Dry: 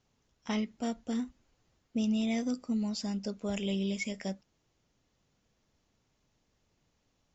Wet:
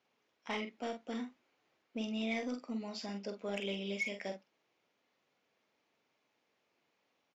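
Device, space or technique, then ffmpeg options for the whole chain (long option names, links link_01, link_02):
intercom: -filter_complex "[0:a]highpass=370,lowpass=3800,equalizer=frequency=2300:width_type=o:width=0.31:gain=5,asoftclip=type=tanh:threshold=-27dB,asplit=2[link_01][link_02];[link_02]adelay=45,volume=-6.5dB[link_03];[link_01][link_03]amix=inputs=2:normalize=0"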